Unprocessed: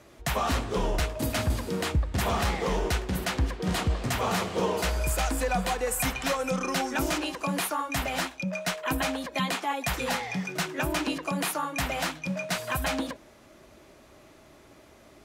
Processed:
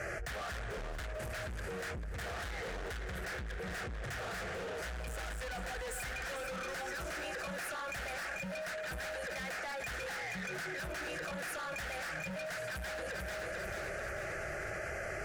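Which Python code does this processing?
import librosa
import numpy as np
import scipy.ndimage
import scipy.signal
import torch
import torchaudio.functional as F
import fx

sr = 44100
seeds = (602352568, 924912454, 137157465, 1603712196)

y = scipy.signal.sosfilt(scipy.signal.butter(2, 8000.0, 'lowpass', fs=sr, output='sos'), x)
y = fx.peak_eq(y, sr, hz=1600.0, db=9.5, octaves=0.67)
y = fx.fixed_phaser(y, sr, hz=1000.0, stages=6)
y = 10.0 ** (-37.5 / 20.0) * np.tanh(y / 10.0 ** (-37.5 / 20.0))
y = fx.echo_feedback(y, sr, ms=441, feedback_pct=43, wet_db=-12.0)
y = fx.env_flatten(y, sr, amount_pct=100)
y = y * 10.0 ** (-4.0 / 20.0)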